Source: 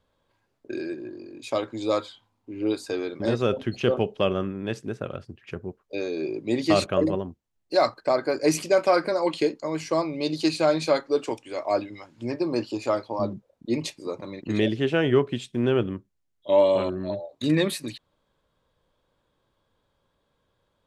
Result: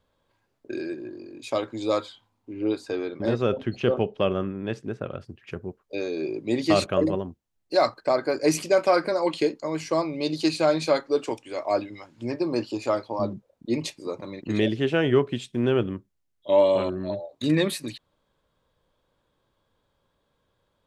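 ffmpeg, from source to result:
-filter_complex "[0:a]asettb=1/sr,asplit=3[s0][s1][s2];[s0]atrim=end=2.534[s3];[s1]atrim=start=2.53:end=5.21,asetpts=PTS-STARTPTS,afade=t=in:d=0.004:c=qsin,afade=t=out:st=2.676:d=0.004:c=qsin,lowpass=f=3300:p=1[s4];[s2]atrim=start=5.206[s5];[s3][s4]acrossfade=d=0.004:c1=hsin:c2=qsin[s6];[s6][s5]acrossfade=d=0.004:c1=qsin:c2=hsin"

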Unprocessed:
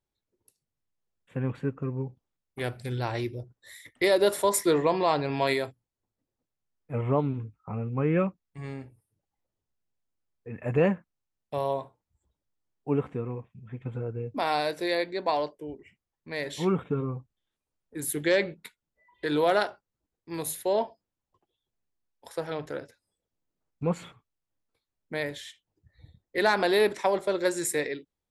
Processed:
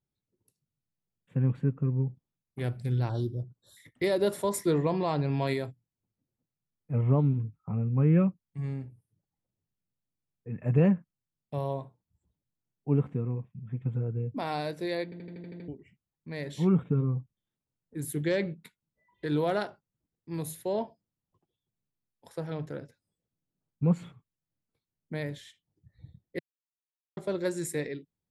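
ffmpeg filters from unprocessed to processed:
-filter_complex "[0:a]asettb=1/sr,asplit=3[s0][s1][s2];[s0]atrim=end=3.094[s3];[s1]atrim=start=3.09:end=3.77,asetpts=PTS-STARTPTS,afade=t=in:d=0.004:c=qsin,afade=t=out:st=0.676:d=0.004:c=qsin,asuperstop=centerf=2200:order=12:qfactor=1.5[s4];[s2]atrim=start=3.766[s5];[s3][s4]acrossfade=d=0.004:c1=hsin:c2=qsin[s6];[s6][s5]acrossfade=d=0.004:c1=qsin:c2=hsin,asplit=11[s7][s8][s9][s10][s11][s12][s13][s14][s15][s16][s17];[s7]atrim=end=15.122[s18];[s8]atrim=start=15.038:end=15.122[s19];[s9]atrim=start=15.038:end=15.122[s20];[s10]atrim=start=15.038:end=15.122[s21];[s11]atrim=start=15.038:end=15.122[s22];[s12]atrim=start=15.038:end=15.122[s23];[s13]atrim=start=15.038:end=15.122[s24];[s14]atrim=start=15.038:end=15.122[s25];[s15]atrim=start=15.678:end=26.39,asetpts=PTS-STARTPTS,afade=t=out:st=10.708:d=0.004:c=hsin[s26];[s16]atrim=start=26.39:end=27.17,asetpts=PTS-STARTPTS,volume=0[s27];[s17]atrim=start=27.17,asetpts=PTS-STARTPTS,afade=t=in:d=0.004:c=hsin[s28];[s18][s19]acrossfade=d=0.004:c1=hsin:c2=hsin[s29];[s29][s20]acrossfade=d=0.004:c1=hsin:c2=hsin[s30];[s30][s21]acrossfade=d=0.004:c1=hsin:c2=hsin[s31];[s31][s22]acrossfade=d=0.004:c1=hsin:c2=hsin[s32];[s32][s23]acrossfade=d=0.004:c1=hsin:c2=hsin[s33];[s33][s24]acrossfade=d=0.004:c1=hsin:c2=hsin[s34];[s34][s25]acrossfade=d=0.004:c1=hsin:c2=hsin[s35];[s26][s27][s28]concat=n=3:v=0:a=1[s36];[s35][s36]acrossfade=d=0.004:c1=hsin:c2=hsin,equalizer=f=150:t=o:w=1.9:g=14.5,volume=0.398"

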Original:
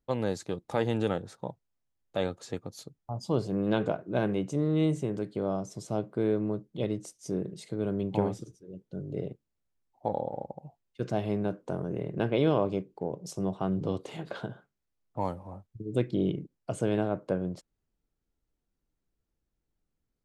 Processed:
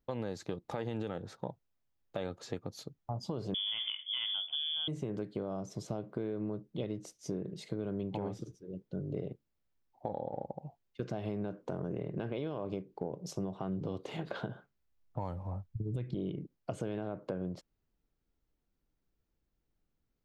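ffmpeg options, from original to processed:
-filter_complex "[0:a]asettb=1/sr,asplit=3[s0][s1][s2];[s0]atrim=end=3.544[s3];[s1]atrim=start=3.54:end=4.88,asetpts=PTS-STARTPTS,afade=t=in:d=0.004:c=qsin,afade=t=out:st=1.336:d=0.004:c=qsin,lowpass=f=3100:t=q:w=0.5098,lowpass=f=3100:t=q:w=0.6013,lowpass=f=3100:t=q:w=0.9,lowpass=f=3100:t=q:w=2.563,afreqshift=-3600[s4];[s2]atrim=start=4.876[s5];[s3][s4]acrossfade=d=0.004:c1=hsin:c2=qsin[s6];[s6][s5]acrossfade=d=0.004:c1=qsin:c2=hsin,asettb=1/sr,asplit=3[s7][s8][s9];[s7]atrim=end=14.484[s10];[s8]atrim=start=14.48:end=16.15,asetpts=PTS-STARTPTS,afade=t=in:d=0.004:c=qsin,afade=t=out:st=1.666:d=0.004:c=qsin,asubboost=boost=8:cutoff=140[s11];[s9]atrim=start=16.146[s12];[s10][s11]acrossfade=d=0.004:c1=hsin:c2=qsin[s13];[s13][s12]acrossfade=d=0.004:c1=qsin:c2=hsin,equalizer=f=9100:w=1.3:g=-10.5,alimiter=limit=0.0841:level=0:latency=1:release=94,acompressor=threshold=0.02:ratio=6,volume=1.12"

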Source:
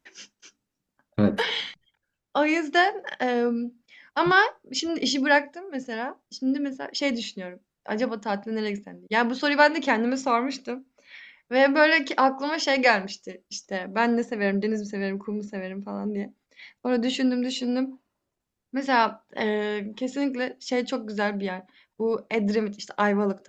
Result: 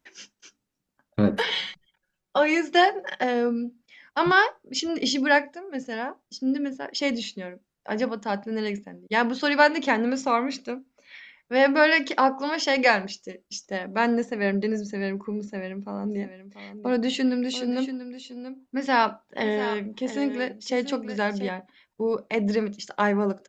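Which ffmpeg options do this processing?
-filter_complex "[0:a]asettb=1/sr,asplit=3[s0][s1][s2];[s0]atrim=end=1.514[s3];[s1]atrim=start=1.51:end=3.24,asetpts=PTS-STARTPTS,afade=t=in:d=0.004:c=qsin,afade=t=out:st=1.726:d=0.004:c=qsin,aecho=1:1:5.4:0.65,atrim=end_sample=76293[s4];[s2]atrim=start=3.236[s5];[s3][s4]acrossfade=d=0.004:c1=hsin:c2=qsin[s6];[s6][s5]acrossfade=d=0.004:c1=qsin:c2=hsin,asplit=3[s7][s8][s9];[s7]afade=t=out:st=16.03:d=0.02[s10];[s8]aecho=1:1:686:0.251,afade=t=in:st=16.03:d=0.02,afade=t=out:st=21.48:d=0.02[s11];[s9]afade=t=in:st=21.48:d=0.02[s12];[s10][s11][s12]amix=inputs=3:normalize=0"

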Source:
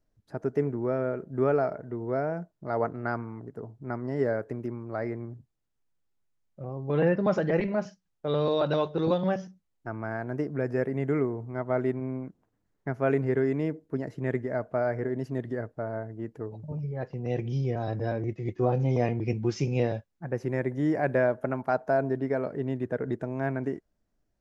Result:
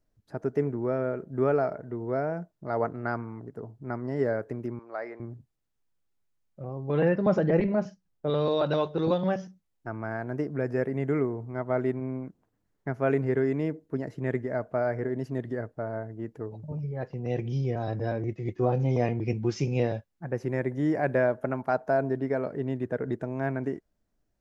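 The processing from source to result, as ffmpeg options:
-filter_complex "[0:a]asettb=1/sr,asplit=3[s0][s1][s2];[s0]atrim=end=4.794[s3];[s1]atrim=start=4.79:end=5.2,asetpts=PTS-STARTPTS,afade=t=in:d=0.004:c=qsin,afade=t=out:st=0.406:d=0.004:c=qsin,highpass=540,lowpass=5500[s4];[s2]atrim=start=5.196[s5];[s3][s4]acrossfade=d=0.004:c1=hsin:c2=qsin[s6];[s6][s5]acrossfade=d=0.004:c1=qsin:c2=hsin,asettb=1/sr,asplit=3[s7][s8][s9];[s7]atrim=end=7.264[s10];[s8]atrim=start=7.26:end=8.3,asetpts=PTS-STARTPTS,afade=t=in:d=0.004:c=qsin,afade=t=out:st=1.036:d=0.004:c=qsin,tiltshelf=f=840:g=4[s11];[s9]atrim=start=8.296[s12];[s10][s11]acrossfade=d=0.004:c1=hsin:c2=qsin[s13];[s13][s12]acrossfade=d=0.004:c1=qsin:c2=hsin"

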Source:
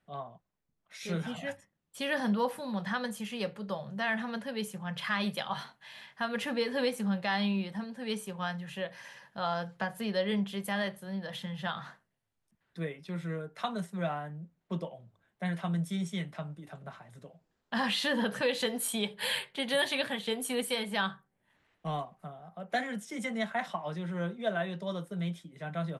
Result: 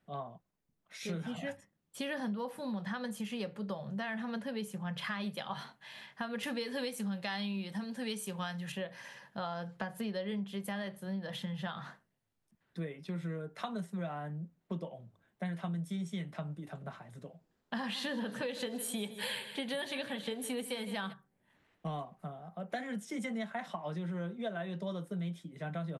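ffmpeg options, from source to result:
-filter_complex "[0:a]asettb=1/sr,asplit=3[s0][s1][s2];[s0]atrim=end=6.434[s3];[s1]atrim=start=6.43:end=8.72,asetpts=PTS-STARTPTS,afade=t=in:d=0.004:c=qsin,afade=t=out:st=2.286:d=0.004:c=qsin,highshelf=f=2400:g=10[s4];[s2]atrim=start=8.716[s5];[s3][s4]acrossfade=d=0.004:c1=hsin:c2=qsin[s6];[s6][s5]acrossfade=d=0.004:c1=qsin:c2=hsin,asplit=3[s7][s8][s9];[s7]afade=t=out:st=17.85:d=0.02[s10];[s8]aecho=1:1:157|314|471|628:0.188|0.0791|0.0332|0.014,afade=t=in:st=17.85:d=0.02,afade=t=out:st=21.12:d=0.02[s11];[s9]afade=t=in:st=21.12:d=0.02[s12];[s10][s11][s12]amix=inputs=3:normalize=0,equalizer=f=240:w=0.6:g=4.5,acompressor=threshold=0.02:ratio=5,volume=0.891"

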